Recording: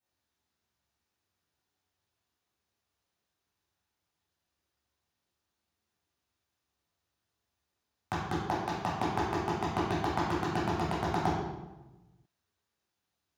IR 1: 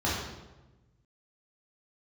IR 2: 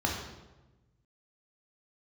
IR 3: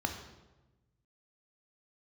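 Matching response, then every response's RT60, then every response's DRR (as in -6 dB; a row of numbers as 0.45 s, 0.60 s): 1; 1.1 s, 1.1 s, 1.1 s; -7.5 dB, -1.5 dB, 4.0 dB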